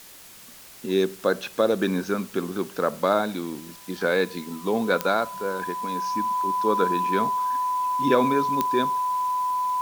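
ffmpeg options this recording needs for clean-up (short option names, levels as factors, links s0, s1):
-af "adeclick=t=4,bandreject=f=1000:w=30,afwtdn=0.005"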